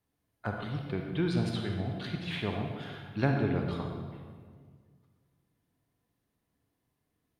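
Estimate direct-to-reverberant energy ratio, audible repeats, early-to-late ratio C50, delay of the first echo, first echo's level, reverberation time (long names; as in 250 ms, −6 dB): 2.0 dB, no echo audible, 2.5 dB, no echo audible, no echo audible, 1.8 s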